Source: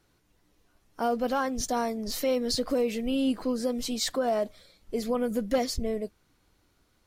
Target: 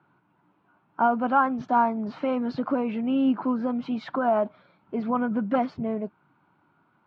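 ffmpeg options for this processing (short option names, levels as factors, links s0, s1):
-af "highpass=f=130:w=0.5412,highpass=f=130:w=1.3066,equalizer=f=150:t=q:w=4:g=6,equalizer=f=480:t=q:w=4:g=-10,equalizer=f=920:t=q:w=4:g=9,equalizer=f=1400:t=q:w=4:g=7,equalizer=f=1900:t=q:w=4:g=-10,lowpass=f=2300:w=0.5412,lowpass=f=2300:w=1.3066,volume=1.68"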